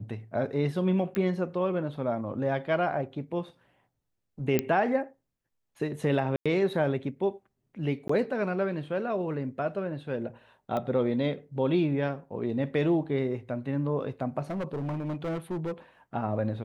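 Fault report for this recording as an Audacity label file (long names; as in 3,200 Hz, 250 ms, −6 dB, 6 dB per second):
1.150000	1.150000	click −17 dBFS
4.590000	4.590000	click −11 dBFS
6.360000	6.460000	drop-out 96 ms
8.080000	8.090000	drop-out 14 ms
10.770000	10.770000	click −20 dBFS
14.400000	15.720000	clipping −28.5 dBFS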